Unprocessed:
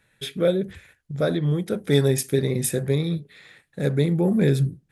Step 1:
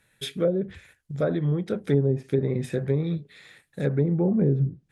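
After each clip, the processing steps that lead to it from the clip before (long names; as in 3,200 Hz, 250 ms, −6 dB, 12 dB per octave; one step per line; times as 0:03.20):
treble cut that deepens with the level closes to 480 Hz, closed at −14.5 dBFS
high-shelf EQ 7,200 Hz +7.5 dB
level −2 dB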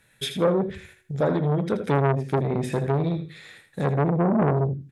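tuned comb filter 370 Hz, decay 0.89 s, mix 30%
repeating echo 80 ms, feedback 23%, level −9 dB
saturating transformer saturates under 760 Hz
level +7 dB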